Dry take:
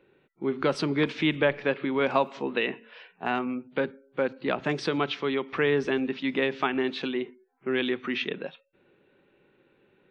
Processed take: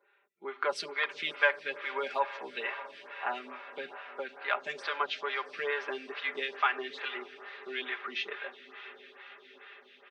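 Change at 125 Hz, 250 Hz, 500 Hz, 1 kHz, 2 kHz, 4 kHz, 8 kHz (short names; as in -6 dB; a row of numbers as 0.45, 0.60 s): under -30 dB, -22.5 dB, -10.0 dB, -2.0 dB, -1.0 dB, -4.0 dB, n/a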